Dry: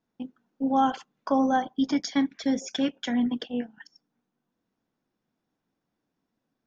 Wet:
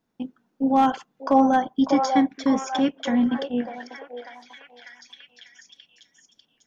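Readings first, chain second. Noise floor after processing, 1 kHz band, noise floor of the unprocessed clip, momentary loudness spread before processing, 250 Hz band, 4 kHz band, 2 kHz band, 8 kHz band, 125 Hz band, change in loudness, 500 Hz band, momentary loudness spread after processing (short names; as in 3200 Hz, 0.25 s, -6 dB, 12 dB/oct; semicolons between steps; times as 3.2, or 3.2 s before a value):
-72 dBFS, +6.0 dB, -83 dBFS, 16 LU, +4.5 dB, +1.0 dB, +4.0 dB, n/a, +4.5 dB, +4.5 dB, +6.0 dB, 18 LU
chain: dynamic EQ 4300 Hz, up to -5 dB, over -46 dBFS, Q 0.82; hard clip -15.5 dBFS, distortion -28 dB; on a send: delay with a stepping band-pass 0.595 s, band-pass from 670 Hz, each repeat 0.7 oct, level -2.5 dB; on the sum: gain +4.5 dB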